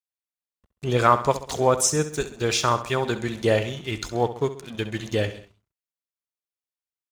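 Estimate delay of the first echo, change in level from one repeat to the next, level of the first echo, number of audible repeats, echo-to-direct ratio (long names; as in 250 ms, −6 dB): 66 ms, −6.0 dB, −13.0 dB, 3, −12.0 dB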